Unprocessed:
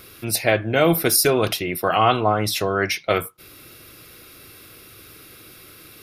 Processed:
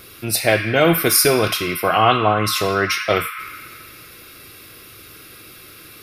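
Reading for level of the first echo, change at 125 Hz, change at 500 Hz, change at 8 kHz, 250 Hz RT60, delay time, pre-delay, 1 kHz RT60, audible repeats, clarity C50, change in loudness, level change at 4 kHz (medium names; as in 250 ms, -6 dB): no echo, +2.0 dB, +2.0 dB, +3.0 dB, 4.0 s, no echo, 5 ms, 1.9 s, no echo, 4.5 dB, +2.5 dB, +4.0 dB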